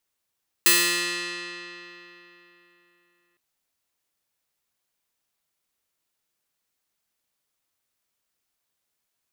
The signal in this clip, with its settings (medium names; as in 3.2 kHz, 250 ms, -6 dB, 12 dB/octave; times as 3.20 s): plucked string F3, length 2.71 s, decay 3.53 s, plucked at 0.23, bright